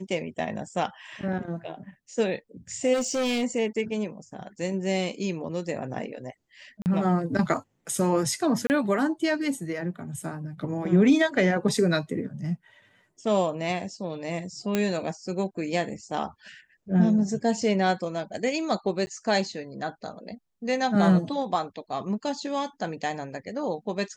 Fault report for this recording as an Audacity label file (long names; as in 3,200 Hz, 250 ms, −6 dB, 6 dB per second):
2.930000	3.440000	clipping −23 dBFS
6.820000	6.860000	drop-out 39 ms
8.670000	8.700000	drop-out 29 ms
14.750000	14.750000	click −10 dBFS
19.060000	19.070000	drop-out 10 ms